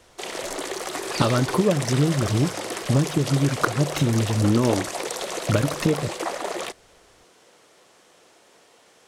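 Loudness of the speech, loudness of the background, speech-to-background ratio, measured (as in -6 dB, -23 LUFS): -23.0 LUFS, -30.0 LUFS, 7.0 dB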